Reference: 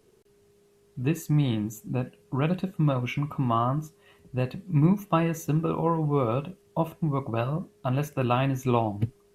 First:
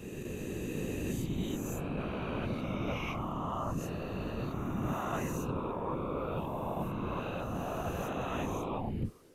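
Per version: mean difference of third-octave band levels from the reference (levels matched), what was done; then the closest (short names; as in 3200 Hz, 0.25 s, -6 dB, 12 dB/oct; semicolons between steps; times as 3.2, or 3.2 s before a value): 11.5 dB: spectral swells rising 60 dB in 2.71 s; reverse; compressor 5:1, threshold -34 dBFS, peak gain reduction 17.5 dB; reverse; whisperiser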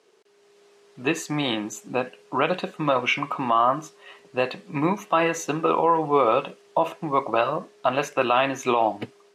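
7.0 dB: AGC gain up to 6 dB; BPF 540–6000 Hz; maximiser +15 dB; gain -8.5 dB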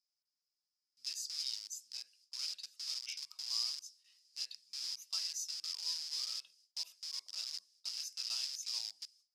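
22.5 dB: gate with hold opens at -49 dBFS; in parallel at -6 dB: wrapped overs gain 24.5 dB; on the sum: ladder band-pass 5200 Hz, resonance 85%; gain +5.5 dB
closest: second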